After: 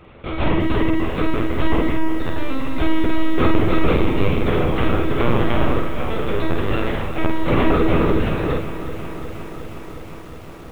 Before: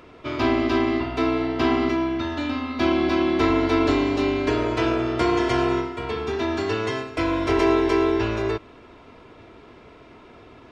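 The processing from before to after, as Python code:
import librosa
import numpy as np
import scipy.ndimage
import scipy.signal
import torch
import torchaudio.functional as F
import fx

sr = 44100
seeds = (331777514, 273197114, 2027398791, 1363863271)

y = fx.octave_divider(x, sr, octaves=2, level_db=-2.0)
y = fx.lpc_vocoder(y, sr, seeds[0], excitation='pitch_kept', order=10)
y = fx.room_early_taps(y, sr, ms=(12, 49), db=(-10.5, -5.5))
y = fx.echo_crushed(y, sr, ms=361, feedback_pct=80, bits=7, wet_db=-13)
y = y * librosa.db_to_amplitude(1.5)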